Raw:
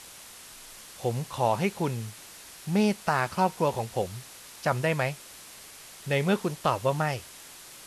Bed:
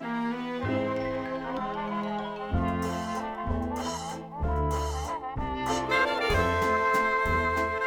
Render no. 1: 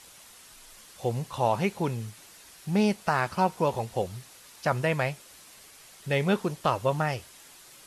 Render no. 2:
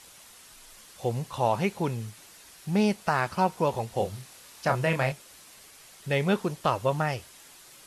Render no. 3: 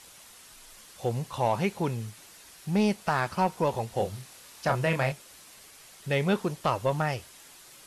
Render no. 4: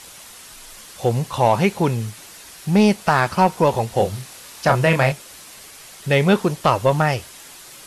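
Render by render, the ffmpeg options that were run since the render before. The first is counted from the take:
-af "afftdn=nr=6:nf=-48"
-filter_complex "[0:a]asettb=1/sr,asplit=3[a][b][c];[a]atrim=end=3.934[d];[b]atrim=start=3.93:end=5.12,asetpts=PTS-STARTPTS,afade=t=in:d=0.004:c=qsin,afade=t=out:st=1.186:d=0.004:c=qsin,asplit=2[e][f];[f]adelay=30,volume=-5.5dB[g];[e][g]amix=inputs=2:normalize=0,atrim=end_sample=52479[h];[c]atrim=start=5.116[i];[d][h]acrossfade=d=0.004:c1=hsin:c2=qsin[j];[j][i]acrossfade=d=0.004:c1=qsin:c2=hsin"
-af "asoftclip=type=tanh:threshold=-13.5dB"
-af "volume=10dB"

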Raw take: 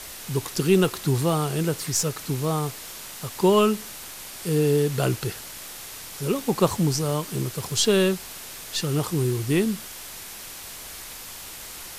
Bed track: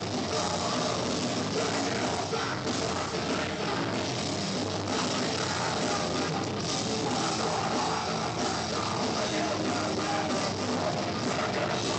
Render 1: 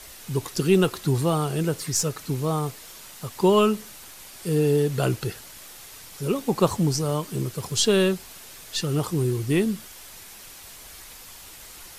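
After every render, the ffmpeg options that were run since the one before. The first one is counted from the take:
-af "afftdn=nr=6:nf=-39"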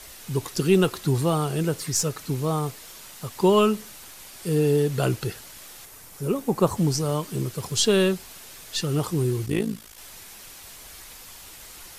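-filter_complex "[0:a]asettb=1/sr,asplit=3[a][b][c];[a]atrim=end=5.854[d];[b]atrim=start=5.85:end=6.77,asetpts=PTS-STARTPTS,afade=t=in:d=0.004:c=qsin,afade=t=out:st=0.916:d=0.004:c=qsin,equalizer=f=3.7k:t=o:w=1.8:g=-7[e];[c]atrim=start=6.766[f];[d][e]acrossfade=d=0.004:c1=hsin:c2=qsin[g];[g][f]acrossfade=d=0.004:c1=qsin:c2=hsin,asettb=1/sr,asplit=3[h][i][j];[h]atrim=end=9.464[k];[i]atrim=start=9.46:end=9.98,asetpts=PTS-STARTPTS,afade=t=in:d=0.004:c=qsin,afade=t=out:st=0.516:d=0.004:c=qsin,tremolo=f=55:d=0.824[l];[j]atrim=start=9.976[m];[k][l]acrossfade=d=0.004:c1=hsin:c2=qsin[n];[n][m]acrossfade=d=0.004:c1=qsin:c2=hsin"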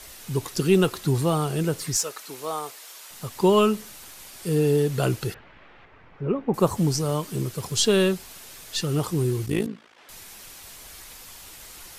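-filter_complex "[0:a]asettb=1/sr,asplit=3[a][b][c];[a]atrim=end=1.964[d];[b]atrim=start=1.96:end=3.11,asetpts=PTS-STARTPTS,afade=t=in:d=0.004:c=qsin,afade=t=out:st=1.146:d=0.004:c=qsin,highpass=550[e];[c]atrim=start=3.106[f];[d][e]acrossfade=d=0.004:c1=hsin:c2=qsin[g];[g][f]acrossfade=d=0.004:c1=qsin:c2=hsin,asettb=1/sr,asplit=3[h][i][j];[h]atrim=end=5.344[k];[i]atrim=start=5.34:end=6.54,asetpts=PTS-STARTPTS,afade=t=in:d=0.004:c=qsin,afade=t=out:st=1.196:d=0.004:c=qsin,lowpass=f=2.5k:w=0.5412,lowpass=f=2.5k:w=1.3066[l];[j]atrim=start=6.536[m];[k][l]acrossfade=d=0.004:c1=hsin:c2=qsin[n];[n][m]acrossfade=d=0.004:c1=qsin:c2=hsin,asettb=1/sr,asplit=3[o][p][q];[o]atrim=end=9.664[r];[p]atrim=start=9.66:end=10.09,asetpts=PTS-STARTPTS,afade=t=in:d=0.004:c=qsin,afade=t=out:st=0.426:d=0.004:c=qsin,highpass=260,lowpass=2.5k[s];[q]atrim=start=10.086[t];[r][s]acrossfade=d=0.004:c1=hsin:c2=qsin[u];[u][t]acrossfade=d=0.004:c1=qsin:c2=hsin"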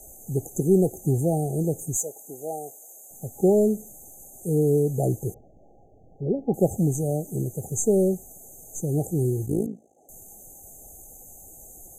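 -af "equalizer=f=9.8k:w=5.4:g=-4,afftfilt=real='re*(1-between(b*sr/4096,830,6100))':imag='im*(1-between(b*sr/4096,830,6100))':win_size=4096:overlap=0.75"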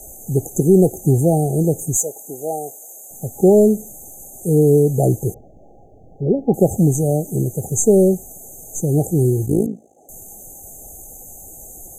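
-af "volume=8dB,alimiter=limit=-3dB:level=0:latency=1"

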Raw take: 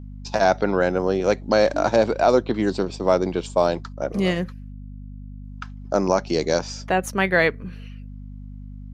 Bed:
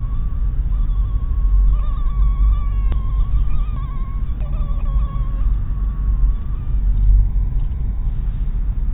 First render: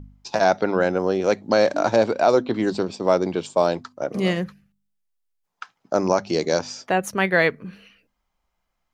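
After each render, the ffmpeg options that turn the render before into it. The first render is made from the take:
-af "bandreject=f=50:t=h:w=4,bandreject=f=100:t=h:w=4,bandreject=f=150:t=h:w=4,bandreject=f=200:t=h:w=4,bandreject=f=250:t=h:w=4"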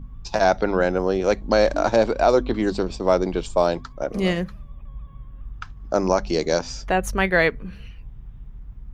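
-filter_complex "[1:a]volume=-18.5dB[a];[0:a][a]amix=inputs=2:normalize=0"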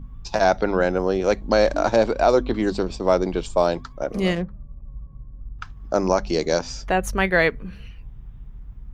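-filter_complex "[0:a]asettb=1/sr,asplit=3[a][b][c];[a]atrim=end=4.354[d];[b]atrim=start=4.35:end=5.59,asetpts=PTS-STARTPTS,afade=t=in:d=0.004:c=qsin,afade=t=out:st=1.236:d=0.004:c=qsin,adynamicsmooth=sensitivity=1.5:basefreq=620[e];[c]atrim=start=5.586[f];[d][e]acrossfade=d=0.004:c1=hsin:c2=qsin[g];[g][f]acrossfade=d=0.004:c1=qsin:c2=hsin"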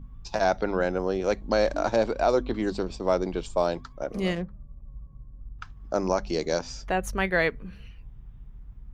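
-af "volume=-5.5dB"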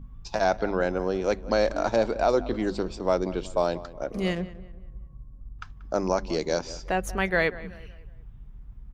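-filter_complex "[0:a]asplit=2[a][b];[b]adelay=185,lowpass=f=2.6k:p=1,volume=-17dB,asplit=2[c][d];[d]adelay=185,lowpass=f=2.6k:p=1,volume=0.42,asplit=2[e][f];[f]adelay=185,lowpass=f=2.6k:p=1,volume=0.42,asplit=2[g][h];[h]adelay=185,lowpass=f=2.6k:p=1,volume=0.42[i];[a][c][e][g][i]amix=inputs=5:normalize=0"

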